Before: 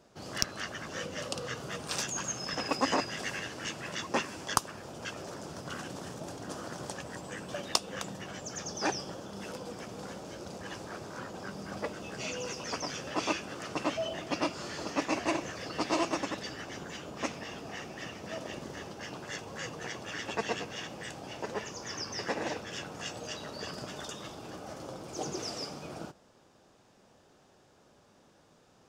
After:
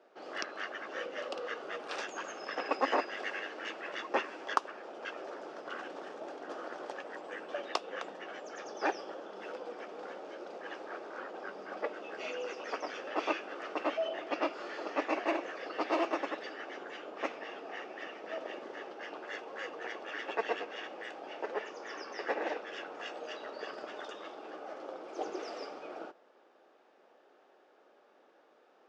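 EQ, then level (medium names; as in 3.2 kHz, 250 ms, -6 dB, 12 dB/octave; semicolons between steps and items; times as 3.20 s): high-pass 340 Hz 24 dB/octave; low-pass 2.4 kHz 12 dB/octave; band-stop 1 kHz, Q 13; +1.0 dB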